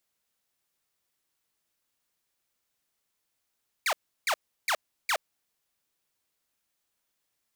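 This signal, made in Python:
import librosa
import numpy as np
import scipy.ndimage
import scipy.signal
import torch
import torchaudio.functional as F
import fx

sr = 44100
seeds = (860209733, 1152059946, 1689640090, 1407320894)

y = fx.laser_zaps(sr, level_db=-21.0, start_hz=2500.0, end_hz=540.0, length_s=0.07, wave='saw', shots=4, gap_s=0.34)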